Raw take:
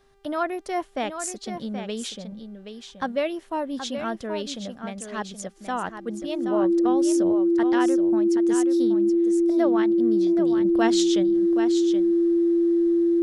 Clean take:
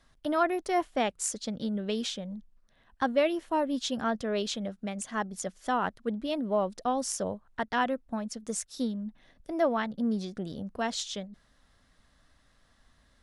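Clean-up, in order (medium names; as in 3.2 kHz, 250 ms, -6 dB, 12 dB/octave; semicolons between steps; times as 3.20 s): de-hum 395.7 Hz, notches 39; band-stop 340 Hz, Q 30; inverse comb 775 ms -8.5 dB; gain correction -6.5 dB, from 10.65 s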